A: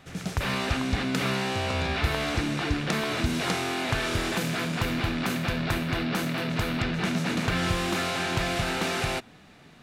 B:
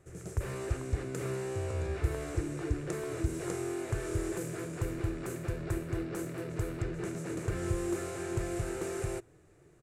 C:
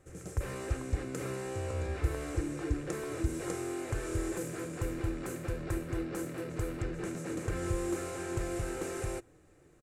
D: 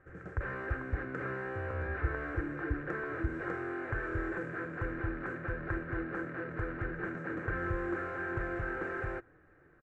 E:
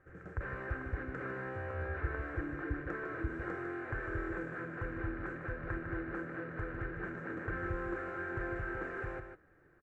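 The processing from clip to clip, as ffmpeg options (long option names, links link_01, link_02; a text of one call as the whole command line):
ffmpeg -i in.wav -af "firequalizer=gain_entry='entry(120,0);entry(230,-20);entry(340,4);entry(770,-13);entry(1200,-11);entry(1800,-12);entry(3400,-22);entry(4900,-16);entry(7500,0);entry(15000,-10)':delay=0.05:min_phase=1,volume=-3dB" out.wav
ffmpeg -i in.wav -af "aecho=1:1:3.8:0.36" out.wav
ffmpeg -i in.wav -af "lowpass=frequency=1600:width_type=q:width=4.8,volume=-2.5dB" out.wav
ffmpeg -i in.wav -af "aecho=1:1:152:0.398,volume=-3.5dB" out.wav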